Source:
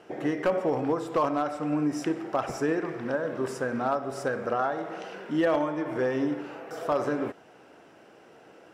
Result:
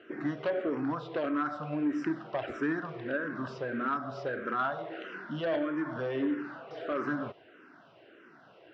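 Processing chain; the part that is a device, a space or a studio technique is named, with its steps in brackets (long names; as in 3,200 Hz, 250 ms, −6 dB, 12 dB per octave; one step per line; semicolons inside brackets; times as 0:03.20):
barber-pole phaser into a guitar amplifier (frequency shifter mixed with the dry sound −1.6 Hz; soft clipping −22.5 dBFS, distortion −16 dB; loudspeaker in its box 110–4,100 Hz, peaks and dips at 190 Hz −4 dB, 480 Hz −7 dB, 830 Hz −9 dB, 1,500 Hz +4 dB, 2,300 Hz −3 dB)
level +2 dB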